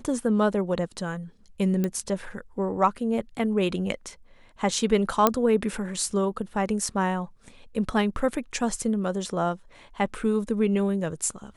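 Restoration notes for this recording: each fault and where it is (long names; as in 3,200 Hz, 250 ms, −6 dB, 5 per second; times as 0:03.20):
0:01.84: click −14 dBFS
0:05.27: click −4 dBFS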